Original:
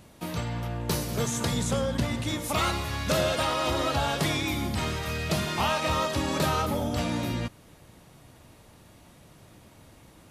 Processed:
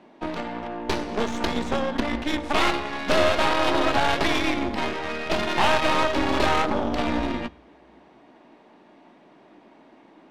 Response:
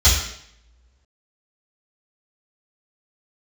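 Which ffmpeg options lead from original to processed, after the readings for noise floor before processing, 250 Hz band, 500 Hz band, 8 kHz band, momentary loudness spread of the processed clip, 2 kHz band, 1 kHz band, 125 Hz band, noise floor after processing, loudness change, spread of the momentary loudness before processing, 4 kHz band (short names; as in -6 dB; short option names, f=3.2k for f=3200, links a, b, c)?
-54 dBFS, +4.0 dB, +5.0 dB, -5.5 dB, 10 LU, +6.5 dB, +6.0 dB, -6.5 dB, -54 dBFS, +4.0 dB, 6 LU, +3.0 dB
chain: -filter_complex "[0:a]highpass=f=260:w=0.5412,highpass=f=260:w=1.3066,equalizer=f=510:t=q:w=4:g=-8,equalizer=f=1.3k:t=q:w=4:g=-6,equalizer=f=7k:t=q:w=4:g=-3,lowpass=f=9.8k:w=0.5412,lowpass=f=9.8k:w=1.3066,aeval=exprs='0.168*(cos(1*acos(clip(val(0)/0.168,-1,1)))-cos(1*PI/2))+0.0335*(cos(6*acos(clip(val(0)/0.168,-1,1)))-cos(6*PI/2))':c=same,asplit=2[a][b];[1:a]atrim=start_sample=2205[c];[b][c]afir=irnorm=-1:irlink=0,volume=-39dB[d];[a][d]amix=inputs=2:normalize=0,adynamicsmooth=sensitivity=1.5:basefreq=1.9k,volume=8dB"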